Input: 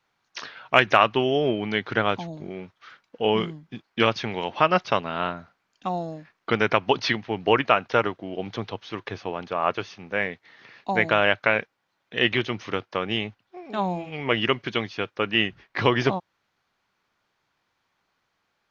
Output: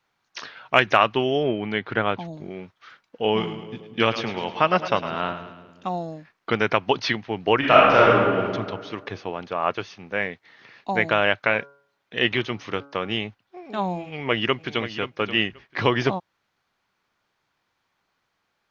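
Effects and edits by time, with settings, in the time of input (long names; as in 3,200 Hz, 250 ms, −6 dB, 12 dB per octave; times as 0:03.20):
0:01.43–0:02.25: low-pass filter 3,300 Hz
0:03.26–0:05.96: echo with a time of its own for lows and highs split 500 Hz, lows 183 ms, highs 106 ms, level −11 dB
0:07.58–0:08.37: thrown reverb, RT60 1.7 s, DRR −6.5 dB
0:11.46–0:13.18: hum removal 140.4 Hz, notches 11
0:14.05–0:14.90: delay throw 530 ms, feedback 15%, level −11 dB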